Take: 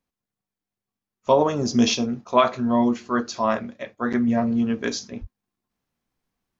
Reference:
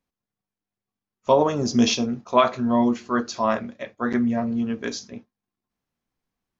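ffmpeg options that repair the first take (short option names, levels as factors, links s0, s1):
-filter_complex "[0:a]asplit=3[s0][s1][s2];[s0]afade=t=out:st=5.2:d=0.02[s3];[s1]highpass=f=140:w=0.5412,highpass=f=140:w=1.3066,afade=t=in:st=5.2:d=0.02,afade=t=out:st=5.32:d=0.02[s4];[s2]afade=t=in:st=5.32:d=0.02[s5];[s3][s4][s5]amix=inputs=3:normalize=0,asetnsamples=n=441:p=0,asendcmd='4.28 volume volume -3dB',volume=1"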